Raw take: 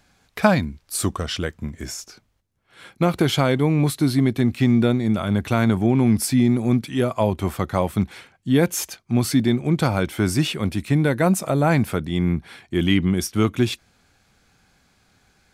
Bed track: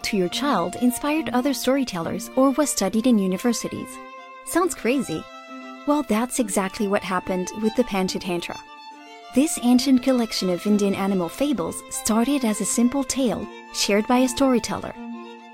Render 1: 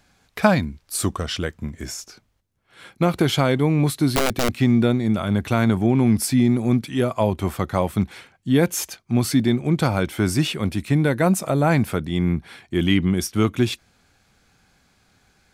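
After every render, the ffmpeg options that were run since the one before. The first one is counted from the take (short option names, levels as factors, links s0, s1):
-filter_complex "[0:a]asettb=1/sr,asplit=3[s0][s1][s2];[s0]atrim=end=4.094[s3];[s1]atrim=start=4.09:end=4.54,asetpts=PTS-STARTPTS,afade=t=in:d=0.004:c=qsin,afade=t=out:st=0.446:d=0.004:c=qsin,aeval=exprs='(mod(4.73*val(0)+1,2)-1)/4.73':c=same[s4];[s2]atrim=start=4.536[s5];[s3][s4]acrossfade=d=0.004:c1=hsin:c2=qsin[s6];[s6][s5]acrossfade=d=0.004:c1=qsin:c2=hsin"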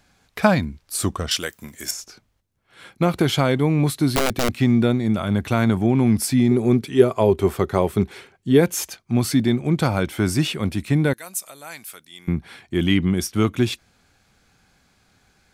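-filter_complex "[0:a]asettb=1/sr,asplit=3[s0][s1][s2];[s0]atrim=end=1.314[s3];[s1]atrim=start=1.31:end=1.91,asetpts=PTS-STARTPTS,afade=t=in:d=0.004:c=qsin,afade=t=out:st=0.596:d=0.004:c=qsin,aemphasis=mode=production:type=riaa[s4];[s2]atrim=start=1.906[s5];[s3][s4]acrossfade=d=0.004:c1=hsin:c2=qsin[s6];[s6][s5]acrossfade=d=0.004:c1=qsin:c2=hsin,asettb=1/sr,asplit=3[s7][s8][s9];[s7]atrim=end=6.514[s10];[s8]atrim=start=6.51:end=8.61,asetpts=PTS-STARTPTS,afade=t=in:d=0.004:c=qsin,afade=t=out:st=2.096:d=0.004:c=qsin,equalizer=f=400:w=5.3:g=14[s11];[s9]atrim=start=8.606[s12];[s10][s11]acrossfade=d=0.004:c1=hsin:c2=qsin[s13];[s13][s12]acrossfade=d=0.004:c1=qsin:c2=hsin,asettb=1/sr,asplit=3[s14][s15][s16];[s14]atrim=end=11.134[s17];[s15]atrim=start=11.13:end=12.28,asetpts=PTS-STARTPTS,afade=t=in:d=0.004:c=qsin,afade=t=out:st=1.146:d=0.004:c=qsin,aderivative[s18];[s16]atrim=start=12.276[s19];[s17][s18]acrossfade=d=0.004:c1=hsin:c2=qsin[s20];[s20][s19]acrossfade=d=0.004:c1=qsin:c2=hsin"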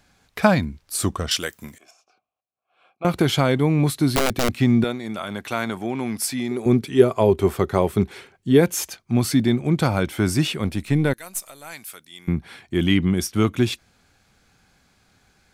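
-filter_complex "[0:a]asettb=1/sr,asplit=3[s0][s1][s2];[s0]atrim=end=1.784[s3];[s1]atrim=start=1.78:end=3.05,asetpts=PTS-STARTPTS,afade=t=in:d=0.004:c=qsin,afade=t=out:st=1.266:d=0.004:c=qsin,asplit=3[s4][s5][s6];[s4]bandpass=f=730:t=q:w=8,volume=1[s7];[s5]bandpass=f=1090:t=q:w=8,volume=0.501[s8];[s6]bandpass=f=2440:t=q:w=8,volume=0.355[s9];[s7][s8][s9]amix=inputs=3:normalize=0[s10];[s2]atrim=start=3.046[s11];[s3][s10]acrossfade=d=0.004:c1=hsin:c2=qsin[s12];[s12][s11]acrossfade=d=0.004:c1=qsin:c2=hsin,asettb=1/sr,asplit=3[s13][s14][s15];[s13]atrim=end=4.844[s16];[s14]atrim=start=4.84:end=6.66,asetpts=PTS-STARTPTS,afade=t=in:d=0.004:c=qsin,afade=t=out:st=1.816:d=0.004:c=qsin,highpass=f=680:p=1[s17];[s15]atrim=start=6.656[s18];[s16][s17]acrossfade=d=0.004:c1=hsin:c2=qsin[s19];[s19][s18]acrossfade=d=0.004:c1=qsin:c2=hsin,asettb=1/sr,asplit=3[s20][s21][s22];[s20]atrim=end=10.624[s23];[s21]atrim=start=10.62:end=11.73,asetpts=PTS-STARTPTS,afade=t=in:d=0.004:c=qsin,afade=t=out:st=1.106:d=0.004:c=qsin,aeval=exprs='if(lt(val(0),0),0.708*val(0),val(0))':c=same[s24];[s22]atrim=start=11.726[s25];[s23][s24]acrossfade=d=0.004:c1=hsin:c2=qsin[s26];[s26][s25]acrossfade=d=0.004:c1=qsin:c2=hsin"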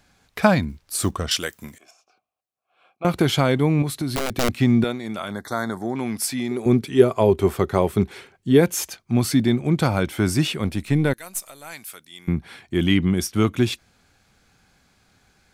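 -filter_complex "[0:a]asplit=3[s0][s1][s2];[s0]afade=t=out:st=0.68:d=0.02[s3];[s1]acrusher=bits=8:mode=log:mix=0:aa=0.000001,afade=t=in:st=0.68:d=0.02,afade=t=out:st=1.17:d=0.02[s4];[s2]afade=t=in:st=1.17:d=0.02[s5];[s3][s4][s5]amix=inputs=3:normalize=0,asettb=1/sr,asplit=3[s6][s7][s8];[s6]atrim=end=3.824[s9];[s7]atrim=start=3.82:end=4.35,asetpts=PTS-STARTPTS,afade=t=in:d=0.004:c=qsin,afade=t=out:st=0.526:d=0.004:c=qsin,acompressor=threshold=0.0708:ratio=3:attack=3.2:release=140:knee=1:detection=peak[s10];[s8]atrim=start=4.346[s11];[s9][s10]acrossfade=d=0.004:c1=hsin:c2=qsin[s12];[s12][s11]acrossfade=d=0.004:c1=qsin:c2=hsin,asettb=1/sr,asplit=3[s13][s14][s15];[s13]atrim=end=5.314[s16];[s14]atrim=start=5.31:end=5.96,asetpts=PTS-STARTPTS,afade=t=in:d=0.004:c=qsin,afade=t=out:st=0.646:d=0.004:c=qsin,asuperstop=centerf=2700:order=8:qfactor=1.7[s17];[s15]atrim=start=5.956[s18];[s16][s17]acrossfade=d=0.004:c1=hsin:c2=qsin[s19];[s19][s18]acrossfade=d=0.004:c1=qsin:c2=hsin"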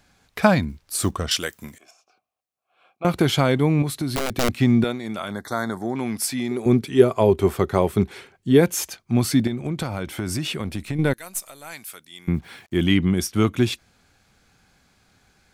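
-filter_complex "[0:a]asettb=1/sr,asplit=3[s0][s1][s2];[s0]atrim=end=9.474[s3];[s1]atrim=start=9.47:end=10.99,asetpts=PTS-STARTPTS,afade=t=in:d=0.004:c=qsin,afade=t=out:st=1.516:d=0.004:c=qsin,acompressor=threshold=0.0794:ratio=6:attack=3.2:release=140:knee=1:detection=peak[s4];[s2]atrim=start=10.986[s5];[s3][s4]acrossfade=d=0.004:c1=hsin:c2=qsin[s6];[s6][s5]acrossfade=d=0.004:c1=qsin:c2=hsin,asettb=1/sr,asplit=3[s7][s8][s9];[s7]atrim=end=12.344[s10];[s8]atrim=start=12.34:end=12.82,asetpts=PTS-STARTPTS,afade=t=in:d=0.004:c=qsin,afade=t=out:st=0.476:d=0.004:c=qsin,acrusher=bits=8:mix=0:aa=0.5[s11];[s9]atrim=start=12.816[s12];[s10][s11]acrossfade=d=0.004:c1=hsin:c2=qsin[s13];[s13][s12]acrossfade=d=0.004:c1=qsin:c2=hsin"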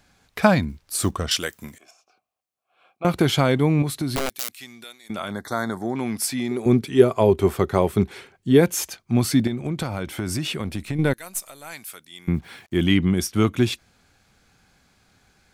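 -filter_complex "[0:a]asettb=1/sr,asplit=3[s0][s1][s2];[s0]atrim=end=4.294[s3];[s1]atrim=start=4.29:end=5.1,asetpts=PTS-STARTPTS,afade=t=in:d=0.004:c=qsin,afade=t=out:st=0.806:d=0.004:c=qsin,aderivative[s4];[s2]atrim=start=5.096[s5];[s3][s4]acrossfade=d=0.004:c1=hsin:c2=qsin[s6];[s6][s5]acrossfade=d=0.004:c1=qsin:c2=hsin"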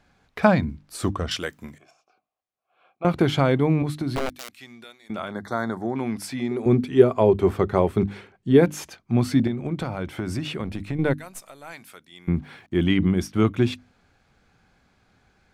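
-af "lowpass=f=2100:p=1,bandreject=f=50:t=h:w=6,bandreject=f=100:t=h:w=6,bandreject=f=150:t=h:w=6,bandreject=f=200:t=h:w=6,bandreject=f=250:t=h:w=6,bandreject=f=300:t=h:w=6"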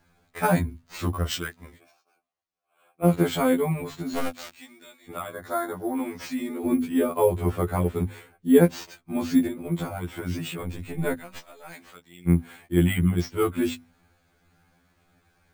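-af "acrusher=samples=4:mix=1:aa=0.000001,afftfilt=real='re*2*eq(mod(b,4),0)':imag='im*2*eq(mod(b,4),0)':win_size=2048:overlap=0.75"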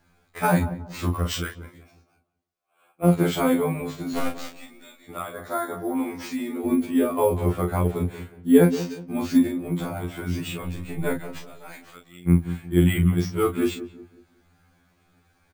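-filter_complex "[0:a]asplit=2[s0][s1];[s1]adelay=34,volume=0.501[s2];[s0][s2]amix=inputs=2:normalize=0,asplit=2[s3][s4];[s4]adelay=182,lowpass=f=850:p=1,volume=0.251,asplit=2[s5][s6];[s6]adelay=182,lowpass=f=850:p=1,volume=0.38,asplit=2[s7][s8];[s8]adelay=182,lowpass=f=850:p=1,volume=0.38,asplit=2[s9][s10];[s10]adelay=182,lowpass=f=850:p=1,volume=0.38[s11];[s3][s5][s7][s9][s11]amix=inputs=5:normalize=0"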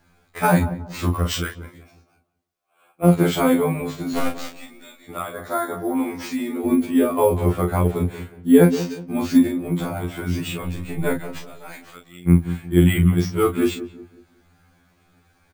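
-af "volume=1.5,alimiter=limit=0.794:level=0:latency=1"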